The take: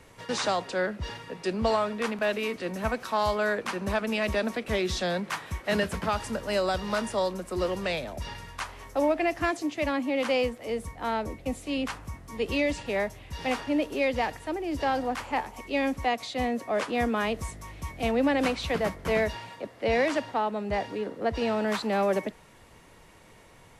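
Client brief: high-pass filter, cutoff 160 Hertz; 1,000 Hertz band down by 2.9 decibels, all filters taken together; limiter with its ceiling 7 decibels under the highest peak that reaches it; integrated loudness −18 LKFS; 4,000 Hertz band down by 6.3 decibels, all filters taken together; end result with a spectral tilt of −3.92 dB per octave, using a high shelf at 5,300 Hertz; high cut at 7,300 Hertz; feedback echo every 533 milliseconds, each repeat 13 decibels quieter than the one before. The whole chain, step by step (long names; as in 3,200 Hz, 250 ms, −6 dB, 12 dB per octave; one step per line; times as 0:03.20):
high-pass filter 160 Hz
low-pass filter 7,300 Hz
parametric band 1,000 Hz −3.5 dB
parametric band 4,000 Hz −5 dB
high-shelf EQ 5,300 Hz −7.5 dB
brickwall limiter −22.5 dBFS
repeating echo 533 ms, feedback 22%, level −13 dB
level +14.5 dB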